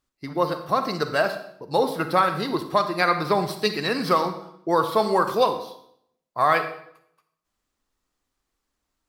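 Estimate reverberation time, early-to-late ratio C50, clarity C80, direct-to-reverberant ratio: 0.70 s, 9.5 dB, 12.0 dB, 8.5 dB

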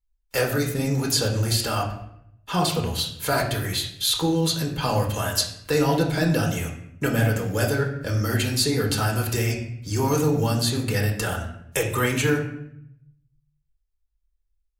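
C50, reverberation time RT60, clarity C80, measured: 7.0 dB, 0.75 s, 10.0 dB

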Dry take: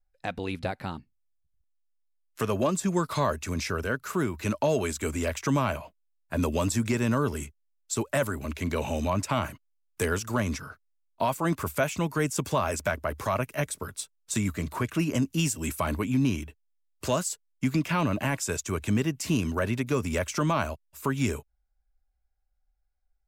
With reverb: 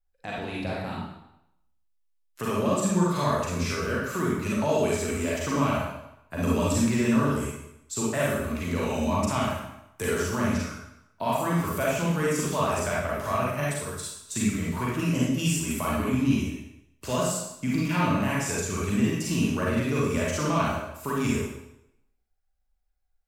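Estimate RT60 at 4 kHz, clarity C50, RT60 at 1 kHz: 0.75 s, -1.5 dB, 0.85 s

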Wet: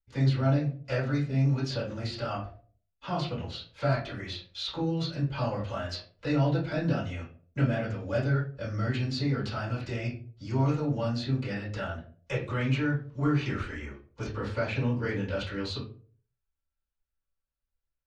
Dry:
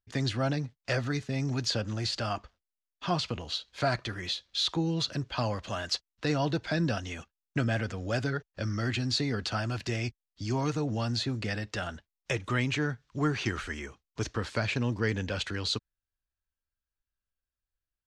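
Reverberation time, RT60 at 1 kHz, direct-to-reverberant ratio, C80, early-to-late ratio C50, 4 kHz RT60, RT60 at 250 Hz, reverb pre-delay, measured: 0.45 s, 0.35 s, -10.0 dB, 13.0 dB, 7.0 dB, 0.25 s, 0.50 s, 3 ms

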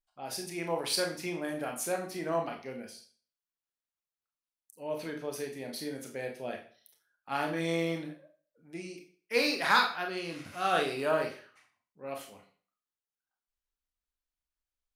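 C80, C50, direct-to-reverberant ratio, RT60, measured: 12.5 dB, 8.5 dB, 2.0 dB, 0.45 s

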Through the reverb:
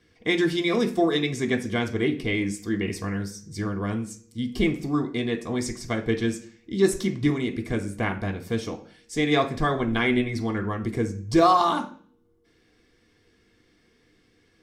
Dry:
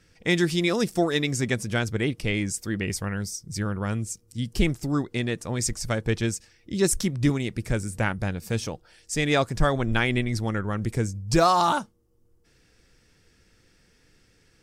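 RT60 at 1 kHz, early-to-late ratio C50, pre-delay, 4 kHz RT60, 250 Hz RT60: 0.40 s, 12.5 dB, 3 ms, 0.50 s, 0.60 s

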